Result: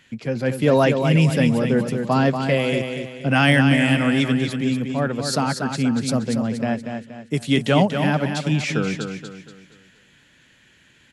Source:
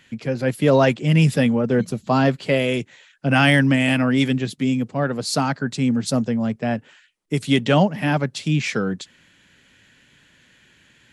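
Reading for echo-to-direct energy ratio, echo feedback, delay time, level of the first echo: -6.0 dB, 39%, 237 ms, -6.5 dB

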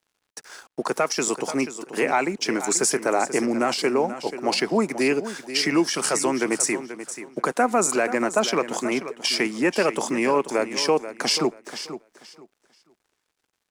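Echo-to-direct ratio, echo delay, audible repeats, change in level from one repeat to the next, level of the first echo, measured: -12.0 dB, 484 ms, 2, -13.0 dB, -12.0 dB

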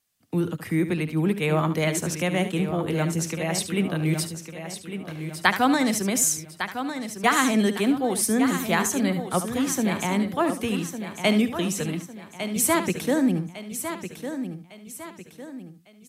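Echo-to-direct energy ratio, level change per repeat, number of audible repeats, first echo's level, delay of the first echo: -6.5 dB, no regular repeats, 7, -11.0 dB, 72 ms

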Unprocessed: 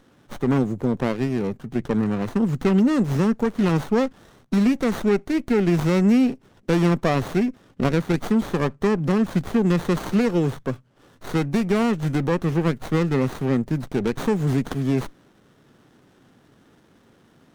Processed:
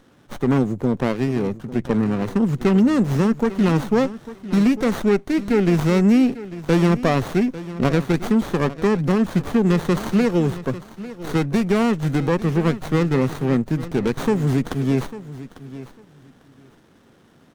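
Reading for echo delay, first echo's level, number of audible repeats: 848 ms, -15.5 dB, 2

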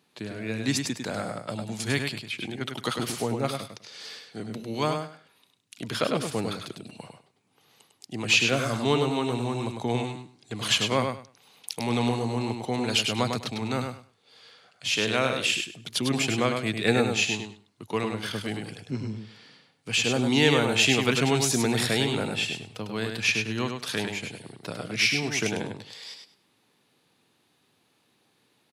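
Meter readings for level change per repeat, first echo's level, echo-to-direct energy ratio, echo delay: -14.5 dB, -5.5 dB, -5.5 dB, 101 ms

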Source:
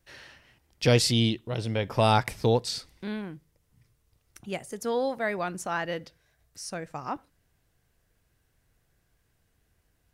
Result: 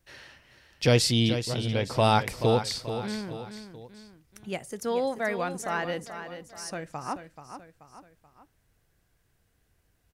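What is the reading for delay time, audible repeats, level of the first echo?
432 ms, 3, -10.0 dB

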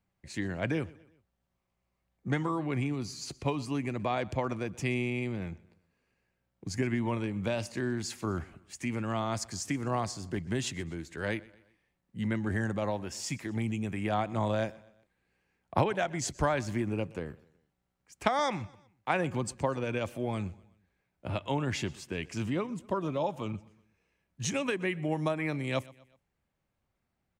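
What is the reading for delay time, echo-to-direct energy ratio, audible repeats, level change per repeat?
124 ms, -21.0 dB, 2, -7.0 dB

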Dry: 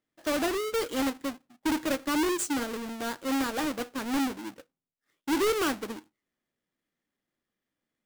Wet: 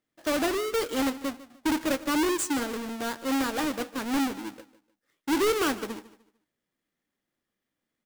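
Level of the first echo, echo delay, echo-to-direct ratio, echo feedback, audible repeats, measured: -17.0 dB, 150 ms, -16.5 dB, 30%, 2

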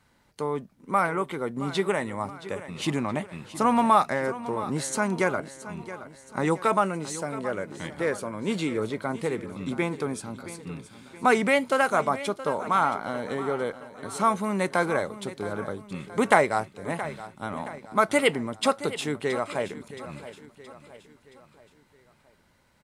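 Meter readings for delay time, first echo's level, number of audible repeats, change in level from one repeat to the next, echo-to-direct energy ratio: 672 ms, -14.5 dB, 4, -6.5 dB, -13.5 dB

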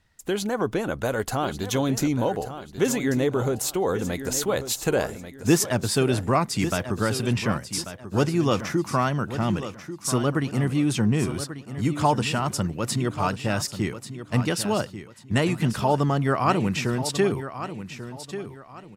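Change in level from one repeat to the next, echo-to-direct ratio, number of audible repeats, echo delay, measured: -10.5 dB, -11.0 dB, 3, 1140 ms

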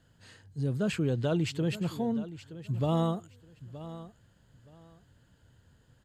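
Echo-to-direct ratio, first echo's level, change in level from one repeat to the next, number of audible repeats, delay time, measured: -15.0 dB, -15.0 dB, -13.5 dB, 2, 921 ms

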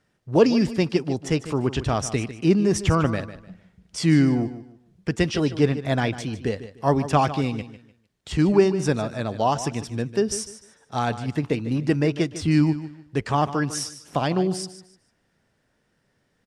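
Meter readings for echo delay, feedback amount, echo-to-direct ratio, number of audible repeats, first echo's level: 150 ms, 27%, -13.0 dB, 2, -13.5 dB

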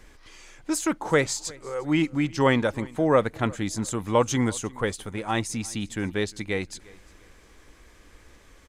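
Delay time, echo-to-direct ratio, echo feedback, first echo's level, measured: 351 ms, -23.0 dB, 34%, -23.5 dB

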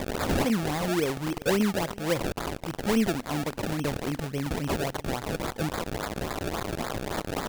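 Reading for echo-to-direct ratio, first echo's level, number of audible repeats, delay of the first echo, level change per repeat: -22.5 dB, -22.5 dB, 1, 379 ms, no regular repeats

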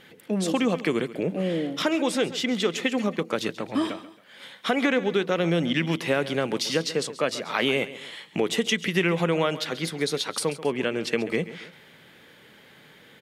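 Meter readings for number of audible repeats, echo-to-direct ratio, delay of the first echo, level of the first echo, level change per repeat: 2, -15.0 dB, 136 ms, -15.5 dB, -7.5 dB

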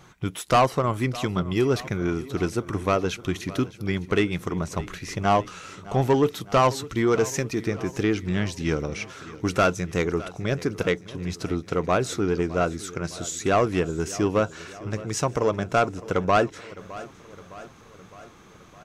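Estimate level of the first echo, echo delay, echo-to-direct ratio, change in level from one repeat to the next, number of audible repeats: -18.0 dB, 611 ms, -16.0 dB, -4.5 dB, 4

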